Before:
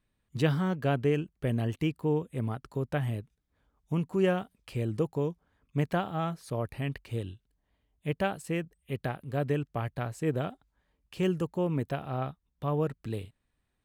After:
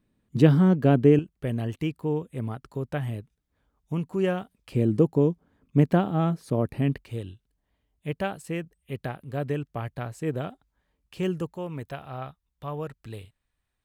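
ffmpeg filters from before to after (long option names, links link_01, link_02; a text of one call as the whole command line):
ffmpeg -i in.wav -af "asetnsamples=nb_out_samples=441:pad=0,asendcmd='1.19 equalizer g 1;4.72 equalizer g 12;7.02 equalizer g 0.5;11.53 equalizer g -7',equalizer=frequency=250:width_type=o:width=2.3:gain=12.5" out.wav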